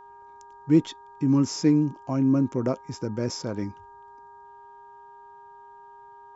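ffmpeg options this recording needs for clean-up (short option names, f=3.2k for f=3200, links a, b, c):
-af "bandreject=f=404.8:t=h:w=4,bandreject=f=809.6:t=h:w=4,bandreject=f=1.2144k:t=h:w=4,bandreject=f=1.6192k:t=h:w=4,bandreject=f=940:w=30"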